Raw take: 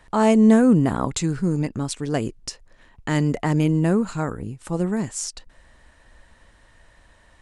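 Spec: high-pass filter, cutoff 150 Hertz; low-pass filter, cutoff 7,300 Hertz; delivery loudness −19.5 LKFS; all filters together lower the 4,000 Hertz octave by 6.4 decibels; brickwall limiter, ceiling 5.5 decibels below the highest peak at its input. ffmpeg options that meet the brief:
ffmpeg -i in.wav -af "highpass=150,lowpass=7300,equalizer=frequency=4000:width_type=o:gain=-8.5,volume=4.5dB,alimiter=limit=-8.5dB:level=0:latency=1" out.wav

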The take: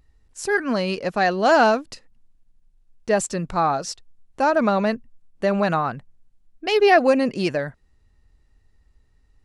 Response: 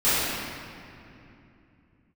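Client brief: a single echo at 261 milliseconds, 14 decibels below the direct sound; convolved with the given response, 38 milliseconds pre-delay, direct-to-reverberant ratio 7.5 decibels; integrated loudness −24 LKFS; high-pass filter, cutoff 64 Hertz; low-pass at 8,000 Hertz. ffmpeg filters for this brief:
-filter_complex "[0:a]highpass=64,lowpass=8000,aecho=1:1:261:0.2,asplit=2[link_01][link_02];[1:a]atrim=start_sample=2205,adelay=38[link_03];[link_02][link_03]afir=irnorm=-1:irlink=0,volume=-26dB[link_04];[link_01][link_04]amix=inputs=2:normalize=0,volume=-3.5dB"

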